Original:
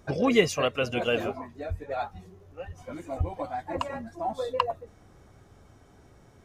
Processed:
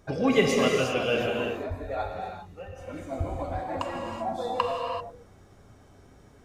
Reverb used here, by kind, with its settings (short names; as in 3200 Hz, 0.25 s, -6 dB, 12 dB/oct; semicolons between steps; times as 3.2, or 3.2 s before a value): non-linear reverb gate 0.41 s flat, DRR -0.5 dB; gain -2 dB